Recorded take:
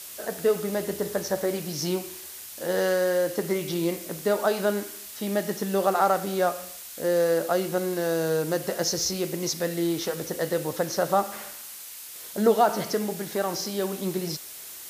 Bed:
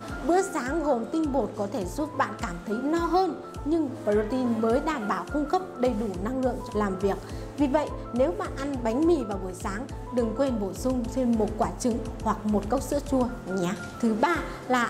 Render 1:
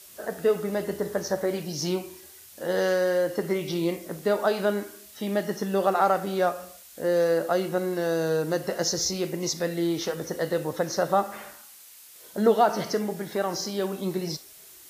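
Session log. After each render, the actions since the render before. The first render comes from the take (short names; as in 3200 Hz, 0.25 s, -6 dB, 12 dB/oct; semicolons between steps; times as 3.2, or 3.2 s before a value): noise print and reduce 8 dB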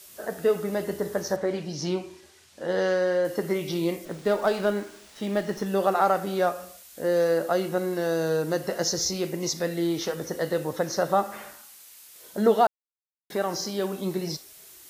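1.36–3.25 air absorption 74 m; 4.05–5.66 running maximum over 3 samples; 12.67–13.3 mute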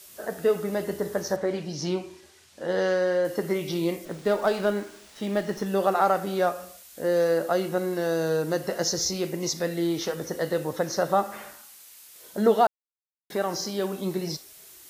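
nothing audible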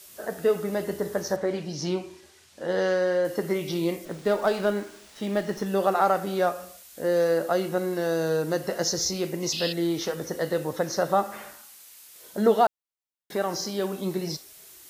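9.52–9.73 painted sound noise 2500–5300 Hz -32 dBFS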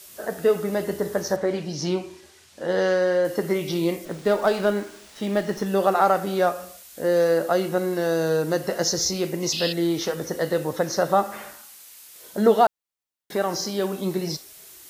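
gain +3 dB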